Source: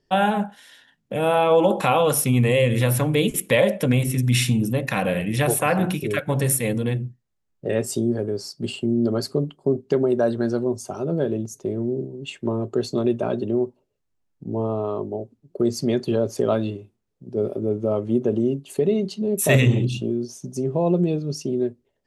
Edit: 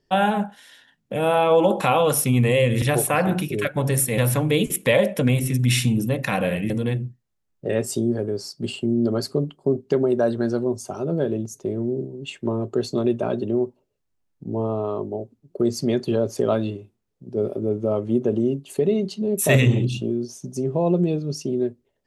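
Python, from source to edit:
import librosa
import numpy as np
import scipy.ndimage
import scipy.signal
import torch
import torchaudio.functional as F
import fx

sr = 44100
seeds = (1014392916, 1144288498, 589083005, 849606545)

y = fx.edit(x, sr, fx.move(start_s=5.34, length_s=1.36, to_s=2.82), tone=tone)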